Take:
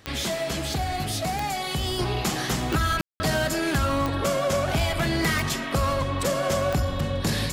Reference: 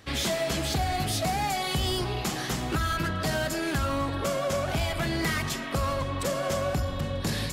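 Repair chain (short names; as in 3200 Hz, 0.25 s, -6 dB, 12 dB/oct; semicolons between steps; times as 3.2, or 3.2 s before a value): de-click; room tone fill 3.01–3.2; gain correction -4 dB, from 1.99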